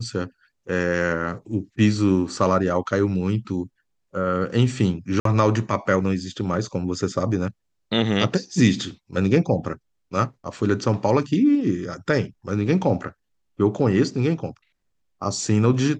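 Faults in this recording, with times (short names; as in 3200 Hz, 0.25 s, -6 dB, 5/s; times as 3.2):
5.2–5.25 gap 53 ms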